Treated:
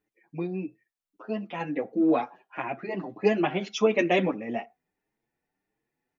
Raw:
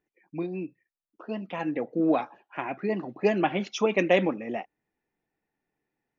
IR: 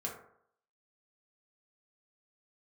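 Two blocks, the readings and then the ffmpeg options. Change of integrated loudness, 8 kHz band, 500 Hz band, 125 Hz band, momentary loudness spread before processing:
+0.5 dB, n/a, 0.0 dB, 0.0 dB, 14 LU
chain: -filter_complex "[0:a]asplit=2[a][b];[1:a]atrim=start_sample=2205,afade=t=out:st=0.16:d=0.01,atrim=end_sample=7497[c];[b][c]afir=irnorm=-1:irlink=0,volume=-19.5dB[d];[a][d]amix=inputs=2:normalize=0,asplit=2[e][f];[f]adelay=7.3,afreqshift=1.6[g];[e][g]amix=inputs=2:normalize=1,volume=2.5dB"

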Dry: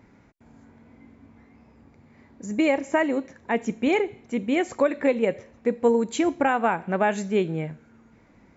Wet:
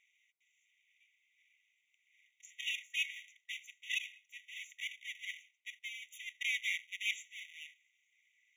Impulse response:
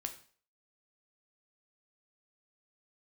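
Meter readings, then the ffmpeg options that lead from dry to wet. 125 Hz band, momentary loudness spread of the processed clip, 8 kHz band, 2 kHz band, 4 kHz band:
under -40 dB, 15 LU, n/a, -8.0 dB, 0.0 dB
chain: -filter_complex "[0:a]afwtdn=0.0447,asplit=2[a][b];[1:a]atrim=start_sample=2205,highshelf=f=2.2k:g=-9[c];[b][c]afir=irnorm=-1:irlink=0,volume=-8dB[d];[a][d]amix=inputs=2:normalize=0,asubboost=boost=6:cutoff=74,acontrast=43,aeval=exprs='abs(val(0))':c=same,areverse,acompressor=threshold=-25dB:ratio=16,areverse,afftfilt=real='re*eq(mod(floor(b*sr/1024/1900),2),1)':imag='im*eq(mod(floor(b*sr/1024/1900),2),1)':win_size=1024:overlap=0.75,volume=5.5dB"

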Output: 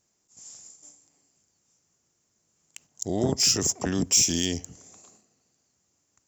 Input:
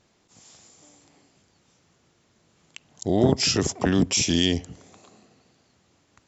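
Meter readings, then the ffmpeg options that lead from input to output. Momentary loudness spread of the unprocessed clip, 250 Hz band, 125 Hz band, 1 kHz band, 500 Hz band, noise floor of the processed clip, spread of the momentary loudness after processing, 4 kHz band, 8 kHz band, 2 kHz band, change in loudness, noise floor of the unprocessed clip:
7 LU, -6.0 dB, -6.0 dB, -6.0 dB, -6.0 dB, -74 dBFS, 12 LU, -1.0 dB, n/a, -6.0 dB, -1.0 dB, -65 dBFS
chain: -af "agate=range=-8dB:threshold=-53dB:ratio=16:detection=peak,aexciter=amount=2.7:drive=9.7:freq=5.4k,volume=-6dB"

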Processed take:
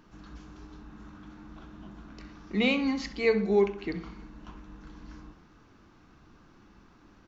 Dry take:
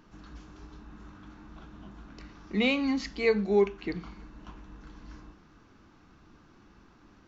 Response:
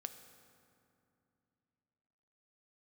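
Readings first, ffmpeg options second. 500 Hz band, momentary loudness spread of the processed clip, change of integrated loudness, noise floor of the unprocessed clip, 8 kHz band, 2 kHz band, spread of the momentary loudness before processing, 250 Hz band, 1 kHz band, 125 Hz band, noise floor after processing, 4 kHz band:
+0.5 dB, 23 LU, +0.5 dB, -59 dBFS, n/a, +0.5 dB, 13 LU, +0.5 dB, +0.5 dB, +0.5 dB, -58 dBFS, 0.0 dB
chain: -filter_complex "[0:a]asplit=2[a][b];[b]adelay=65,lowpass=f=2.5k:p=1,volume=-11dB,asplit=2[c][d];[d]adelay=65,lowpass=f=2.5k:p=1,volume=0.5,asplit=2[e][f];[f]adelay=65,lowpass=f=2.5k:p=1,volume=0.5,asplit=2[g][h];[h]adelay=65,lowpass=f=2.5k:p=1,volume=0.5,asplit=2[i][j];[j]adelay=65,lowpass=f=2.5k:p=1,volume=0.5[k];[a][c][e][g][i][k]amix=inputs=6:normalize=0"

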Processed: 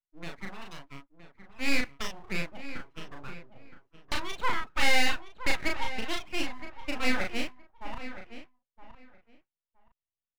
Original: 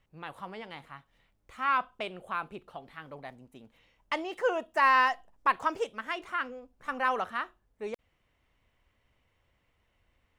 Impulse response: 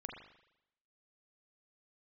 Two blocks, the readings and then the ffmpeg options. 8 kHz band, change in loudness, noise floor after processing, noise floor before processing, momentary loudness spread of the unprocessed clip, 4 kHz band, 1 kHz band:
n/a, -1.5 dB, under -85 dBFS, -74 dBFS, 20 LU, +9.0 dB, -8.0 dB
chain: -filter_complex "[0:a]lowpass=3.6k,bandreject=f=60:t=h:w=6,bandreject=f=120:t=h:w=6,bandreject=f=180:t=h:w=6,afftdn=nr=35:nf=-42,lowshelf=f=190:t=q:w=1.5:g=7.5,asplit=2[a][b];[b]highpass=f=720:p=1,volume=11dB,asoftclip=type=tanh:threshold=-12dB[c];[a][c]amix=inputs=2:normalize=0,lowpass=f=1.5k:p=1,volume=-6dB,acrossover=split=260|830[d][e][f];[f]aexciter=amount=4.1:drive=4.9:freq=2.8k[g];[d][e][g]amix=inputs=3:normalize=0,aeval=exprs='abs(val(0))':c=same,asplit=2[h][i];[i]adelay=36,volume=-3dB[j];[h][j]amix=inputs=2:normalize=0,asplit=2[k][l];[l]adelay=968,lowpass=f=2.6k:p=1,volume=-12dB,asplit=2[m][n];[n]adelay=968,lowpass=f=2.6k:p=1,volume=0.18[o];[m][o]amix=inputs=2:normalize=0[p];[k][p]amix=inputs=2:normalize=0"

